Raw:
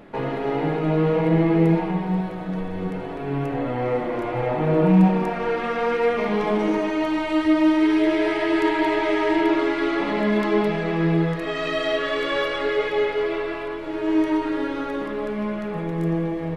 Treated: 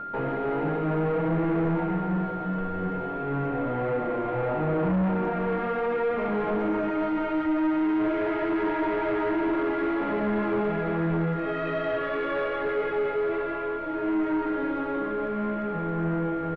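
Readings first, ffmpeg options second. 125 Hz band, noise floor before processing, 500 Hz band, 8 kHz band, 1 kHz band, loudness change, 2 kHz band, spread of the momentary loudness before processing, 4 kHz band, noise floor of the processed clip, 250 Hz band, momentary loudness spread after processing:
-5.5 dB, -30 dBFS, -4.5 dB, no reading, -3.0 dB, -5.0 dB, -6.0 dB, 9 LU, -14.0 dB, -31 dBFS, -5.5 dB, 4 LU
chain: -filter_complex "[0:a]asplit=2[s0][s1];[s1]adelay=501.5,volume=0.2,highshelf=f=4000:g=-11.3[s2];[s0][s2]amix=inputs=2:normalize=0,acrossover=split=580[s3][s4];[s3]crystalizer=i=9:c=0[s5];[s5][s4]amix=inputs=2:normalize=0,aeval=exprs='val(0)+0.0316*sin(2*PI*1400*n/s)':c=same,aresample=16000,asoftclip=type=tanh:threshold=0.0944,aresample=44100,acrossover=split=2800[s6][s7];[s7]acompressor=threshold=0.002:ratio=4:attack=1:release=60[s8];[s6][s8]amix=inputs=2:normalize=0,aemphasis=mode=reproduction:type=75fm,volume=0.794"

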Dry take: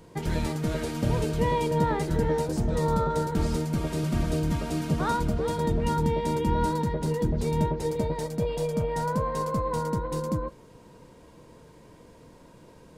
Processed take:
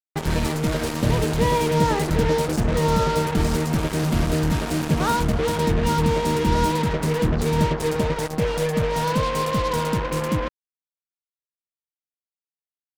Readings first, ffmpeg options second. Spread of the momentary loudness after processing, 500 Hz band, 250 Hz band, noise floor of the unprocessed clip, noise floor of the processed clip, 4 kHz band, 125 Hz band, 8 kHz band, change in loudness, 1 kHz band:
4 LU, +5.0 dB, +5.0 dB, -52 dBFS, under -85 dBFS, +10.5 dB, +5.0 dB, +9.0 dB, +5.5 dB, +5.5 dB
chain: -af "acrusher=bits=4:mix=0:aa=0.5,volume=1.78"

